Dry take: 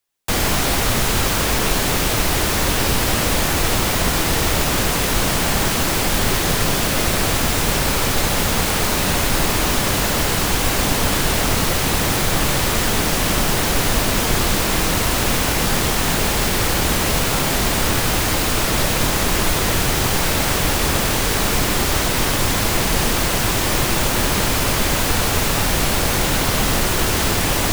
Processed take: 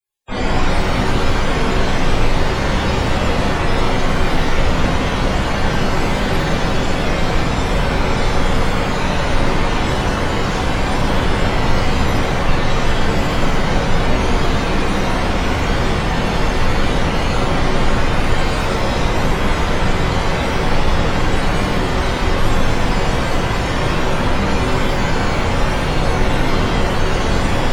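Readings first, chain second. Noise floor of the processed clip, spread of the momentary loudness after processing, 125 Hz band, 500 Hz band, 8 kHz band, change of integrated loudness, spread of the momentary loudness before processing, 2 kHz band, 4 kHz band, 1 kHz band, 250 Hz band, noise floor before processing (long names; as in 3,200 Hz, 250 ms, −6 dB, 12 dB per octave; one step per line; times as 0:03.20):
−18 dBFS, 1 LU, +3.5 dB, +3.0 dB, −12.5 dB, −0.5 dB, 0 LU, 0.0 dB, −4.0 dB, +2.5 dB, +3.0 dB, −20 dBFS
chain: spectral peaks only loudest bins 64
reverb with rising layers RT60 1.2 s, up +7 semitones, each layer −8 dB, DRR −11 dB
level −8.5 dB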